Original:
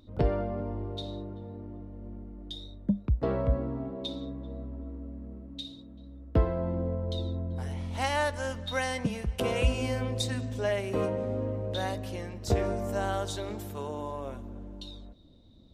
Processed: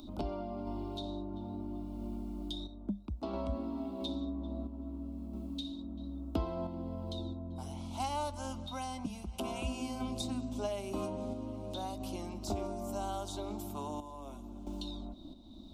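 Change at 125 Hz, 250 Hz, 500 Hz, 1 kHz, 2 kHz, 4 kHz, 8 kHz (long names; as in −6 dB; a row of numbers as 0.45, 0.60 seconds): −10.5, −3.0, −9.0, −4.5, −16.0, −6.0, −5.0 decibels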